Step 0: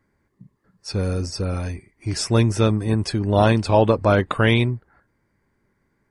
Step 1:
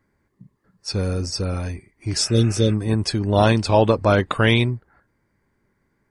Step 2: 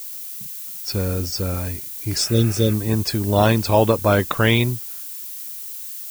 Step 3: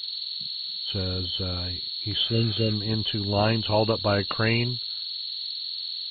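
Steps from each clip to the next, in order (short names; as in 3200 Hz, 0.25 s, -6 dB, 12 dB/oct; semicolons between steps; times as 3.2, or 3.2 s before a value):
spectral repair 2.27–2.71, 570–2800 Hz before; dynamic EQ 5600 Hz, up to +5 dB, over -39 dBFS, Q 0.73
added noise violet -33 dBFS
nonlinear frequency compression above 2600 Hz 4:1; gain -7 dB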